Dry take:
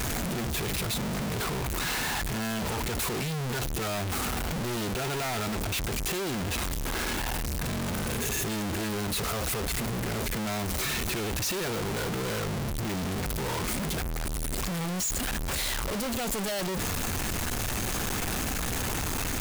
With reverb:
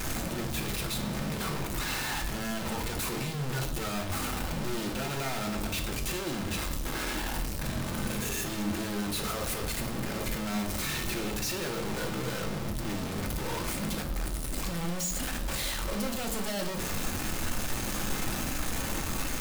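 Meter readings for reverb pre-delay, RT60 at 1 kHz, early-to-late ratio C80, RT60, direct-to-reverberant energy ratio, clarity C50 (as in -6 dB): 3 ms, 0.70 s, 12.0 dB, 0.80 s, 2.5 dB, 9.0 dB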